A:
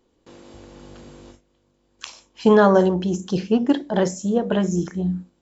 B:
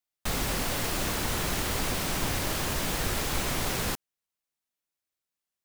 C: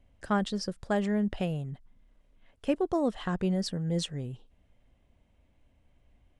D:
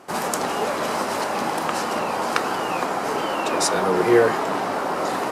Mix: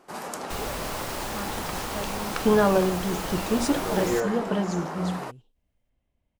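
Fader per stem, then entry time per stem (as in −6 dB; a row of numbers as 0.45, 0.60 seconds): −6.0, −5.0, −10.0, −10.5 decibels; 0.00, 0.25, 1.05, 0.00 seconds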